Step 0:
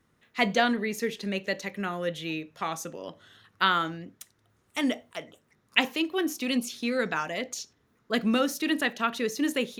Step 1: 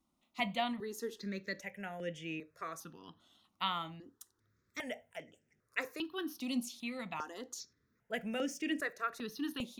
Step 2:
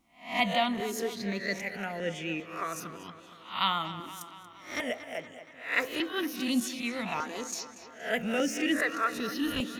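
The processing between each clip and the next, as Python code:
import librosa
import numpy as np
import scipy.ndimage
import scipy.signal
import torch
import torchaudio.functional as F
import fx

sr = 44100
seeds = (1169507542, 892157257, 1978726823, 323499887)

y1 = fx.phaser_held(x, sr, hz=2.5, low_hz=450.0, high_hz=4000.0)
y1 = y1 * librosa.db_to_amplitude(-7.5)
y2 = fx.spec_swells(y1, sr, rise_s=0.41)
y2 = fx.echo_tape(y2, sr, ms=233, feedback_pct=66, wet_db=-12.0, lp_hz=5400.0, drive_db=21.0, wow_cents=20)
y2 = fx.vibrato(y2, sr, rate_hz=7.5, depth_cents=33.0)
y2 = y2 * librosa.db_to_amplitude(6.5)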